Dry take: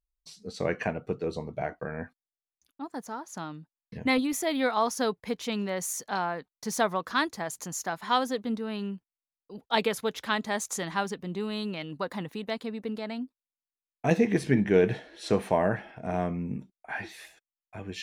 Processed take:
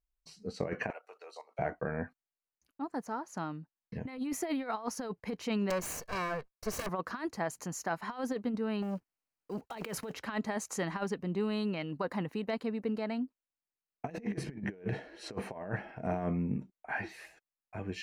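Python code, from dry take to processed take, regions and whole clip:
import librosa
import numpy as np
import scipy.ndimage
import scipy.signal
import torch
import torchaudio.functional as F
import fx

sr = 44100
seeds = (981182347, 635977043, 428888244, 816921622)

y = fx.chain(x, sr, fx.high_shelf(hz=4100.0, db=10.0),
    fx.level_steps(step_db=12),
    fx.highpass(hz=670.0, slope=24), at=(0.9, 1.59))
y = fx.chain(y, sr, fx.lower_of_two(delay_ms=1.8),
    fx.high_shelf(hz=8600.0, db=5.0),
    fx.overflow_wrap(gain_db=21.0), at=(5.7, 6.89))
y = fx.chain(y, sr, fx.block_float(bits=5),
    fx.over_compress(threshold_db=-36.0, ratio=-1.0),
    fx.transformer_sat(knee_hz=1100.0), at=(8.82, 10.15))
y = fx.notch(y, sr, hz=3500.0, q=5.4)
y = fx.over_compress(y, sr, threshold_db=-30.0, ratio=-0.5)
y = fx.high_shelf(y, sr, hz=3900.0, db=-9.5)
y = F.gain(torch.from_numpy(y), -2.5).numpy()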